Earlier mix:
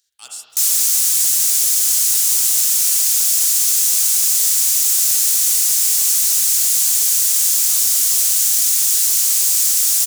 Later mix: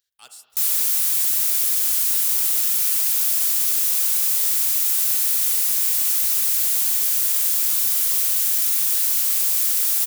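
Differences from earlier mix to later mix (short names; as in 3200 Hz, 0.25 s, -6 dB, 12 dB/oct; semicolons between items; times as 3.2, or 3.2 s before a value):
speech: send -9.5 dB; master: add bell 6800 Hz -12 dB 1.5 oct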